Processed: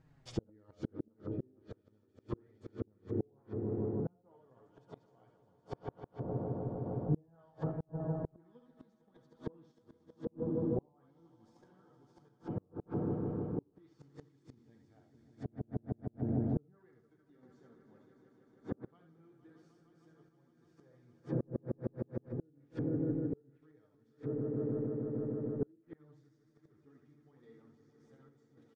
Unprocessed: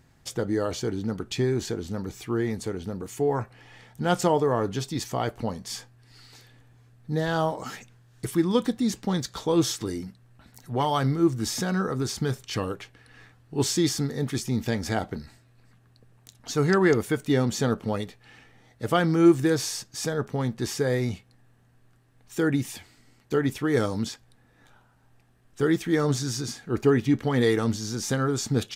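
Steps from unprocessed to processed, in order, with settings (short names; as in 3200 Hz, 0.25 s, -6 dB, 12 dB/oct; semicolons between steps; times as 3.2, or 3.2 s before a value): LPF 1400 Hz 6 dB/oct; early reflections 66 ms -7 dB, 79 ms -8.5 dB; flange 0.42 Hz, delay 6.2 ms, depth 7.9 ms, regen +14%; swelling echo 0.154 s, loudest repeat 5, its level -11 dB; flipped gate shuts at -21 dBFS, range -37 dB; treble ducked by the level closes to 540 Hz, closed at -35.5 dBFS; random-step tremolo; gain +1.5 dB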